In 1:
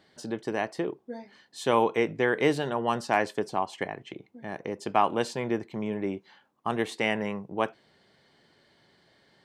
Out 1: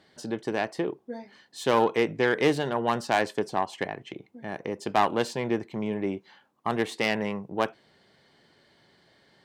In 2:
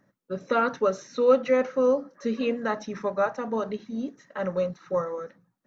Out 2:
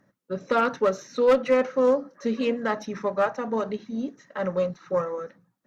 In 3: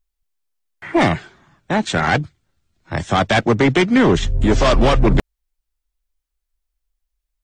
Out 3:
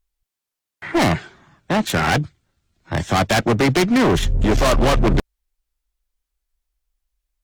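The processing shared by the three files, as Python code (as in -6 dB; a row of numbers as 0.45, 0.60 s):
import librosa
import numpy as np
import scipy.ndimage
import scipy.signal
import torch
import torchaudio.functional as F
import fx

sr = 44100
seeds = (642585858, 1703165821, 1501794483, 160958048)

y = fx.self_delay(x, sr, depth_ms=0.11)
y = fx.clip_asym(y, sr, top_db=-16.0, bottom_db=-12.5)
y = y * 10.0 ** (1.5 / 20.0)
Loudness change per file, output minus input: +1.0, +1.0, -1.5 LU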